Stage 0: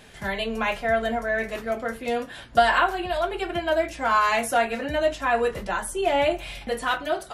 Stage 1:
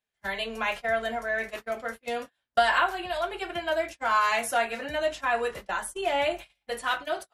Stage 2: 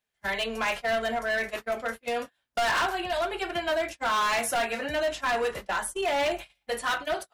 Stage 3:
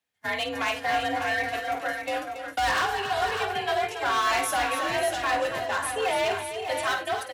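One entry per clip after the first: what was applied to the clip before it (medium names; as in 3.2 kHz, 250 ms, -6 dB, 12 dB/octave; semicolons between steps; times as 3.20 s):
gate -31 dBFS, range -36 dB; bass shelf 440 Hz -10 dB; trim -1.5 dB
hard clipper -26 dBFS, distortion -8 dB; trim +3 dB
frequency shift +50 Hz; on a send: multi-tap echo 52/280/546/596 ms -10.5/-9.5/-15.5/-7 dB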